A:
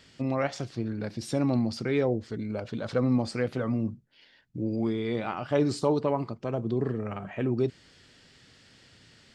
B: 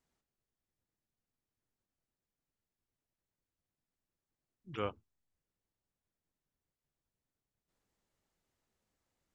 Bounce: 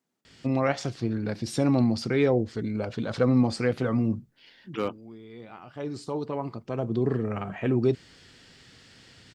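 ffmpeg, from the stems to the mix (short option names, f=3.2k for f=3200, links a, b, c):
-filter_complex "[0:a]bandreject=f=590:w=16,adelay=250,volume=-1.5dB[a];[1:a]highpass=160,asoftclip=type=hard:threshold=-27dB,equalizer=f=240:t=o:w=1.5:g=7.5,volume=1dB,asplit=2[b][c];[c]apad=whole_len=422944[d];[a][d]sidechaincompress=threshold=-52dB:ratio=6:attack=9.5:release=1330[e];[e][b]amix=inputs=2:normalize=0,dynaudnorm=f=110:g=5:m=5dB"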